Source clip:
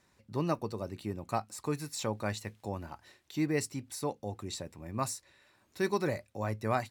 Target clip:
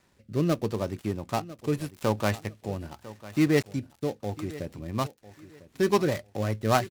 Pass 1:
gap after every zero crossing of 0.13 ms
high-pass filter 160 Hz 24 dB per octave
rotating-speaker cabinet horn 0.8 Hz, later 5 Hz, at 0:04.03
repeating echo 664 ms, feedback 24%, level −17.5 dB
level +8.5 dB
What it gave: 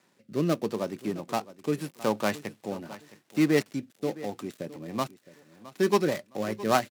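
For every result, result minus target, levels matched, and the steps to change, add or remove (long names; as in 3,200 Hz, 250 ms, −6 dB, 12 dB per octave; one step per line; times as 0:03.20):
echo 336 ms early; 125 Hz band −5.5 dB
change: repeating echo 1,000 ms, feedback 24%, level −17.5 dB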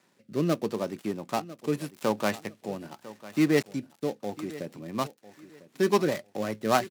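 125 Hz band −5.5 dB
remove: high-pass filter 160 Hz 24 dB per octave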